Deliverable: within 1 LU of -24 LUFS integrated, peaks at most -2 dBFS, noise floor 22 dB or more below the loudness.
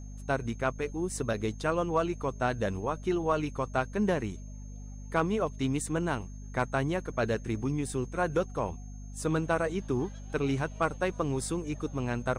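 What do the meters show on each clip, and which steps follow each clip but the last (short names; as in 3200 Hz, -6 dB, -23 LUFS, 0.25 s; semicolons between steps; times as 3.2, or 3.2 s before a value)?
hum 50 Hz; harmonics up to 250 Hz; hum level -40 dBFS; steady tone 6400 Hz; tone level -57 dBFS; loudness -31.5 LUFS; peak -15.5 dBFS; loudness target -24.0 LUFS
-> de-hum 50 Hz, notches 5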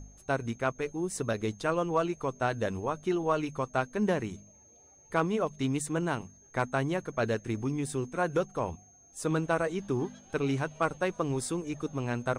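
hum none; steady tone 6400 Hz; tone level -57 dBFS
-> notch 6400 Hz, Q 30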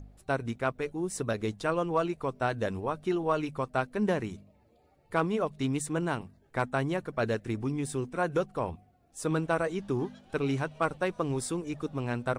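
steady tone none; loudness -31.5 LUFS; peak -16.0 dBFS; loudness target -24.0 LUFS
-> gain +7.5 dB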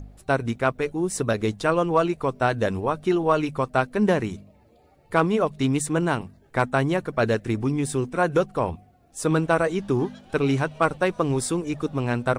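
loudness -24.0 LUFS; peak -8.5 dBFS; noise floor -57 dBFS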